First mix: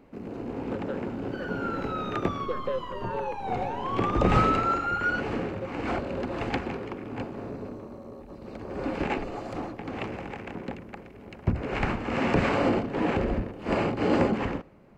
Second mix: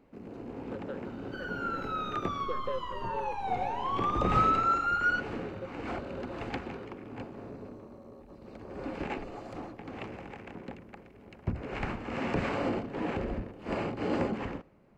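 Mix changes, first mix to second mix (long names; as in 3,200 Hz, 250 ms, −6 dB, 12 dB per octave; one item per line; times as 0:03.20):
speech −5.0 dB
first sound −7.0 dB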